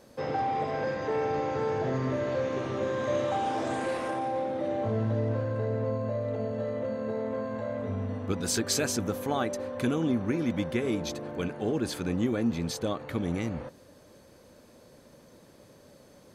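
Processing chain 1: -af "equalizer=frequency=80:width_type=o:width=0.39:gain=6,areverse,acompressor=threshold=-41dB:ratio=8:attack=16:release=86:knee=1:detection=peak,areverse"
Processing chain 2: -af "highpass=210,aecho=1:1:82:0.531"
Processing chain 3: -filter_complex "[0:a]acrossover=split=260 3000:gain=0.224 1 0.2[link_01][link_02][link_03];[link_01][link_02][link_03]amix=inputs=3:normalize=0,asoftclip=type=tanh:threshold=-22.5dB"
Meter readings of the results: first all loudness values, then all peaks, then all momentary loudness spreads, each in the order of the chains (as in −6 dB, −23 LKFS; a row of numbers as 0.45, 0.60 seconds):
−42.0, −30.5, −33.5 LKFS; −28.0, −14.5, −23.0 dBFS; 14, 5, 5 LU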